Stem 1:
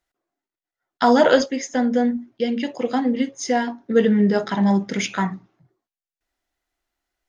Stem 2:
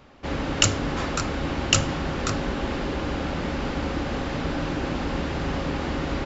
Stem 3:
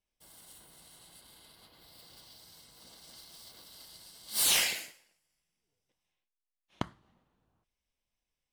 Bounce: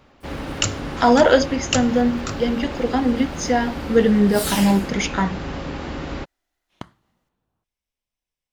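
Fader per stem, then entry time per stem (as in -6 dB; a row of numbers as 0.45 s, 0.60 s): +1.0 dB, -2.0 dB, -1.0 dB; 0.00 s, 0.00 s, 0.00 s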